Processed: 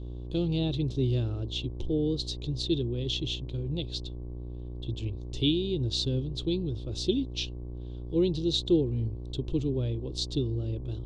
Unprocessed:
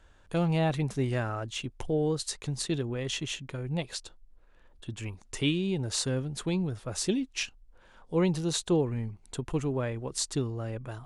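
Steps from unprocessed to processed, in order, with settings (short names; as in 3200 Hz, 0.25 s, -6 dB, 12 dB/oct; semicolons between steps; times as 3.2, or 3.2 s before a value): buzz 60 Hz, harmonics 19, -41 dBFS -5 dB/oct; EQ curve 120 Hz 0 dB, 190 Hz -10 dB, 340 Hz +1 dB, 730 Hz -19 dB, 1900 Hz -26 dB, 3600 Hz +4 dB, 10000 Hz -26 dB; gain +4 dB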